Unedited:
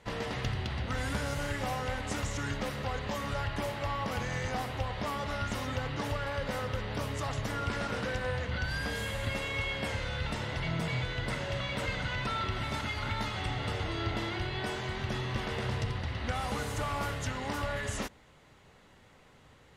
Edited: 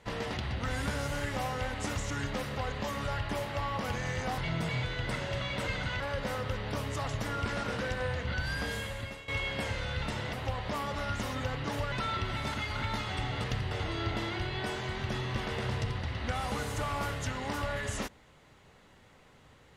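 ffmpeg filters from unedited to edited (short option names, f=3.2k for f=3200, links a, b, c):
-filter_complex "[0:a]asplit=9[a][b][c][d][e][f][g][h][i];[a]atrim=end=0.372[j];[b]atrim=start=0.638:end=4.652[k];[c]atrim=start=10.568:end=12.192[l];[d]atrim=start=6.238:end=9.52,asetpts=PTS-STARTPTS,afade=t=out:st=2.712:d=0.57:silence=0.158489[m];[e]atrim=start=9.52:end=10.572,asetpts=PTS-STARTPTS,afade=t=in:d=0.004:c=hsin:silence=0.158489[n];[f]atrim=start=4.648:end=6.242[o];[g]atrim=start=12.188:end=13.712[p];[h]atrim=start=0.368:end=0.642[q];[i]atrim=start=13.708[r];[j][k]acrossfade=d=0.004:c1=hsin:c2=hsin[s];[s][l]acrossfade=d=0.004:c1=hsin:c2=hsin[t];[m][n]concat=n=2:v=0:a=1[u];[t][u]acrossfade=d=0.004:c1=hsin:c2=hsin[v];[v][o]acrossfade=d=0.004:c1=hsin:c2=hsin[w];[w][p]acrossfade=d=0.004:c1=hsin:c2=hsin[x];[x][q]acrossfade=d=0.004:c1=hsin:c2=hsin[y];[y][r]acrossfade=d=0.004:c1=hsin:c2=hsin"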